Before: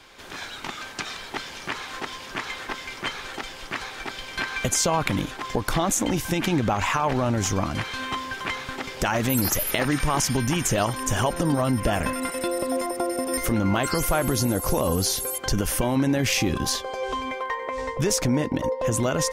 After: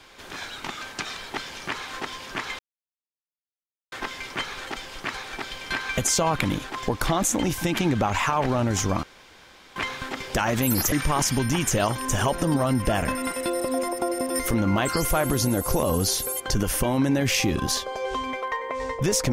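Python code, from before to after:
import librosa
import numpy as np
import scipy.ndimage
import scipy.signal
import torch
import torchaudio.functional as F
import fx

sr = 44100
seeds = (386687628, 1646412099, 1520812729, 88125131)

y = fx.edit(x, sr, fx.insert_silence(at_s=2.59, length_s=1.33),
    fx.room_tone_fill(start_s=7.7, length_s=0.73),
    fx.cut(start_s=9.59, length_s=0.31), tone=tone)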